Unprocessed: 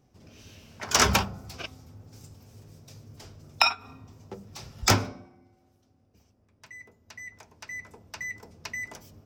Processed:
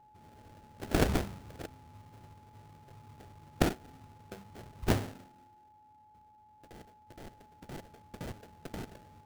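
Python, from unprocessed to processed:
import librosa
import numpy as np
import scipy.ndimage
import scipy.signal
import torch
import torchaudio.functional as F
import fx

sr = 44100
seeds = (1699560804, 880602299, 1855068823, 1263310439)

y = fx.sample_hold(x, sr, seeds[0], rate_hz=1100.0, jitter_pct=20)
y = y + 10.0 ** (-52.0 / 20.0) * np.sin(2.0 * np.pi * 850.0 * np.arange(len(y)) / sr)
y = y * 10.0 ** (-6.0 / 20.0)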